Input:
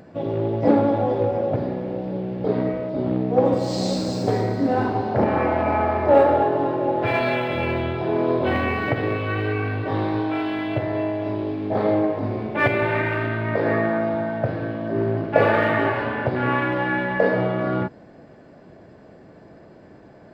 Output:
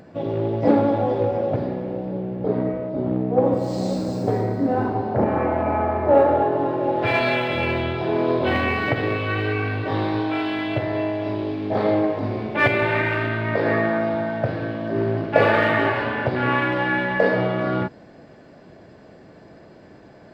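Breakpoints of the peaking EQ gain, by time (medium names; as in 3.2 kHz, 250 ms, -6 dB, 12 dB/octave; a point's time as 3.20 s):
peaking EQ 4.5 kHz 2.3 oct
1.55 s +1.5 dB
2.40 s -9 dB
6.02 s -9 dB
6.69 s -2 dB
7.07 s +5.5 dB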